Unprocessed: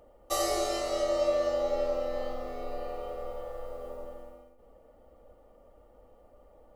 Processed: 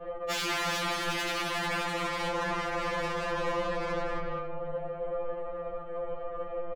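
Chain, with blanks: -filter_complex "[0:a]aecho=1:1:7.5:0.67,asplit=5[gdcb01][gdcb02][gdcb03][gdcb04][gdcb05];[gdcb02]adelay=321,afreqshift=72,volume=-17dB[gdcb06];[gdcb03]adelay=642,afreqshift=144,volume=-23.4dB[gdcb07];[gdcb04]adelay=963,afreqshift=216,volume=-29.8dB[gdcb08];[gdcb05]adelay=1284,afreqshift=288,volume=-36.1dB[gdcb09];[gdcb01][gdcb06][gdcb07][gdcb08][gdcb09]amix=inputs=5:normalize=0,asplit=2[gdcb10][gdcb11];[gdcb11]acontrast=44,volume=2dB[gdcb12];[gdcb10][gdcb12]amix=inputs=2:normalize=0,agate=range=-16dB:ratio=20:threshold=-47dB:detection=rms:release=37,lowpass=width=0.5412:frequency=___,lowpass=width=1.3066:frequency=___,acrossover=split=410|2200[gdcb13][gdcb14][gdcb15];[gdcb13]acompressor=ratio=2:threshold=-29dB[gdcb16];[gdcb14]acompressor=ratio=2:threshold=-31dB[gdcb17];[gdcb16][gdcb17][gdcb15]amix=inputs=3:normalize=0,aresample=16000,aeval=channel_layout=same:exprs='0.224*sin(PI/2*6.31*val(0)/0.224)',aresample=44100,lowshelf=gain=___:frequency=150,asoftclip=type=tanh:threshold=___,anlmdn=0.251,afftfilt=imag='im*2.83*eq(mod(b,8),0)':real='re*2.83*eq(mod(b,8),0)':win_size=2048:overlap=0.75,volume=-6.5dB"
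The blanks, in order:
2.8k, 2.8k, -7.5, -20.5dB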